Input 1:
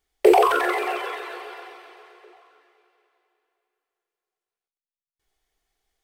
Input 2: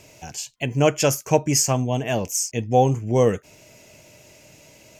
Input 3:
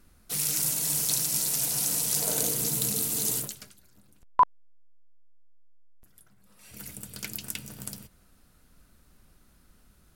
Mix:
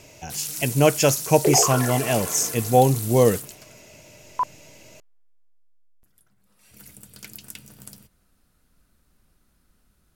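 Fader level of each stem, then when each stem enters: −7.0, +1.0, −4.5 decibels; 1.20, 0.00, 0.00 seconds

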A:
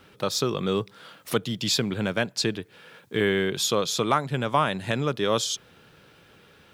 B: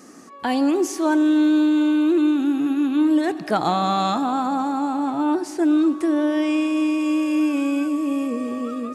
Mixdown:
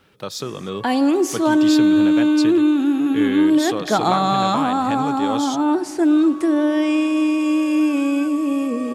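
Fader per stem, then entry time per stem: −3.0, +2.5 decibels; 0.00, 0.40 seconds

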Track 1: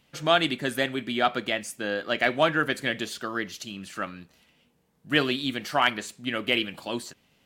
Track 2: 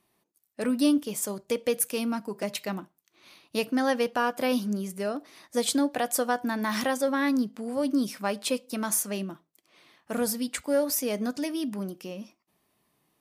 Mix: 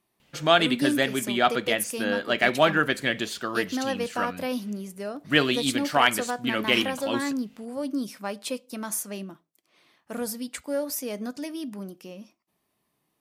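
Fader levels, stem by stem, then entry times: +2.0, −3.5 decibels; 0.20, 0.00 seconds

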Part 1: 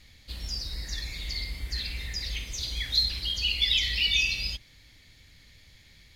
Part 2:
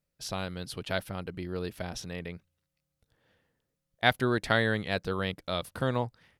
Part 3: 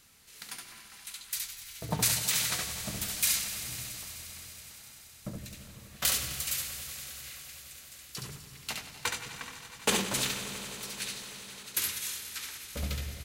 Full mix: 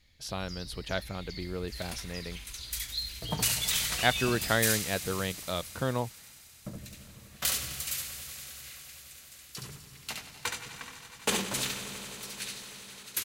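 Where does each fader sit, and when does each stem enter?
−10.5, −1.5, −1.5 decibels; 0.00, 0.00, 1.40 seconds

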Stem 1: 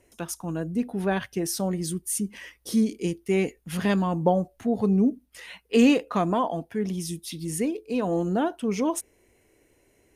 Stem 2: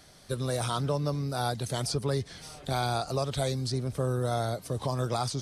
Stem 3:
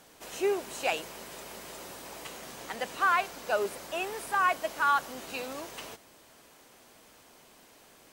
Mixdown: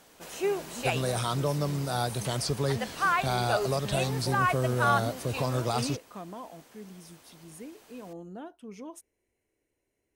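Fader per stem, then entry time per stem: −17.5, +0.5, −0.5 decibels; 0.00, 0.55, 0.00 seconds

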